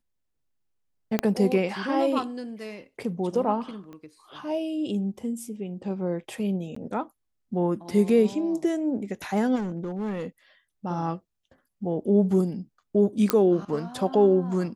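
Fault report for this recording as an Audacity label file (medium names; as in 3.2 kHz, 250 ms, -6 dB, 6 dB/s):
1.190000	1.190000	pop -9 dBFS
3.930000	3.930000	pop -31 dBFS
6.750000	6.760000	dropout 14 ms
9.550000	10.260000	clipped -26 dBFS
13.300000	13.300000	pop -5 dBFS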